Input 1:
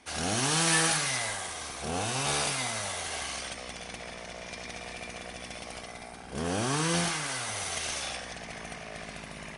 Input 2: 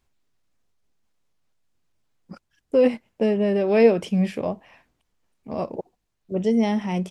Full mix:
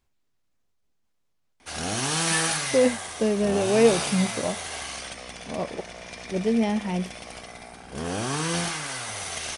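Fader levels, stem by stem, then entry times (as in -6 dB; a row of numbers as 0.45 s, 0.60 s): +1.0 dB, -2.5 dB; 1.60 s, 0.00 s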